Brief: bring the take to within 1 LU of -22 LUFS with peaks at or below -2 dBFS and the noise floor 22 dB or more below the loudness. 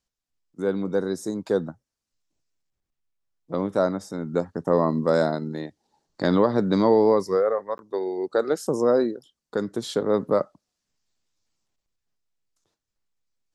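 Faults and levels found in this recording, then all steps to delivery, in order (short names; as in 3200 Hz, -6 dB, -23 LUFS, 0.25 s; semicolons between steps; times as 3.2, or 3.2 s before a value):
dropouts 1; longest dropout 11 ms; loudness -24.0 LUFS; peak -7.0 dBFS; loudness target -22.0 LUFS
-> interpolate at 7.78, 11 ms; gain +2 dB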